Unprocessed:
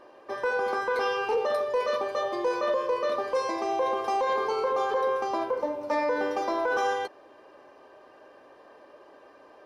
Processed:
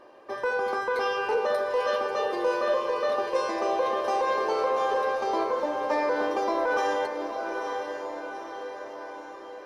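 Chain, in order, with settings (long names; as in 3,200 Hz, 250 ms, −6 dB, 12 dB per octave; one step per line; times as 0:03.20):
on a send: feedback delay with all-pass diffusion 900 ms, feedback 56%, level −6 dB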